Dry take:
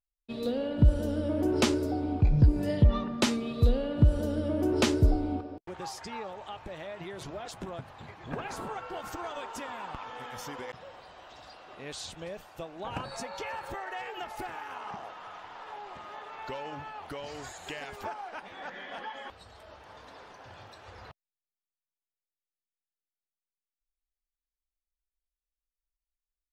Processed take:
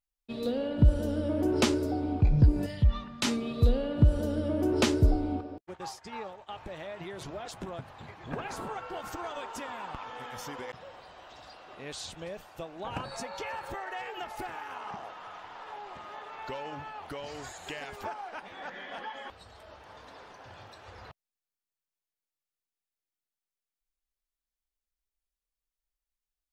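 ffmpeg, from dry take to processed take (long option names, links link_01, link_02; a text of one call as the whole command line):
ffmpeg -i in.wav -filter_complex "[0:a]asettb=1/sr,asplit=3[link_01][link_02][link_03];[link_01]atrim=end=2.664[link_04];[link_02]atrim=start=2.66:end=3.25,asetpts=PTS-STARTPTS,afade=type=in:duration=0.004:curve=qsin,afade=type=out:start_time=0.586:duration=0.004:curve=qsin,equalizer=frequency=400:width_type=o:width=2.3:gain=-15[link_05];[link_03]atrim=start=3.246[link_06];[link_04][link_05]acrossfade=duration=0.004:curve1=hsin:curve2=qsin[link_07];[link_07][link_06]acrossfade=duration=0.004:curve1=qsin:curve2=hsin,asettb=1/sr,asplit=3[link_08][link_09][link_10];[link_08]atrim=end=5.614[link_11];[link_09]atrim=start=5.61:end=6.49,asetpts=PTS-STARTPTS,afade=type=in:duration=0.004:curve=qsin,afade=type=out:start_time=0.876:duration=0.004:curve=qsin,agate=range=-33dB:threshold=-38dB:ratio=3:release=100:detection=peak[link_12];[link_10]atrim=start=6.486[link_13];[link_11][link_12]acrossfade=duration=0.004:curve1=hsin:curve2=qsin[link_14];[link_14][link_13]acrossfade=duration=0.004:curve1=qsin:curve2=hsin" out.wav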